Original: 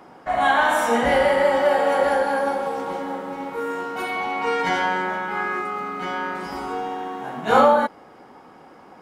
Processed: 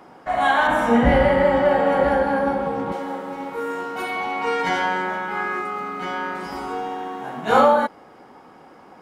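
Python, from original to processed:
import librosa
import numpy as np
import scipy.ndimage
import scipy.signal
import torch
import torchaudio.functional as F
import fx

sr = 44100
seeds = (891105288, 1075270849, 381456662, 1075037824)

y = fx.bass_treble(x, sr, bass_db=15, treble_db=-11, at=(0.67, 2.92))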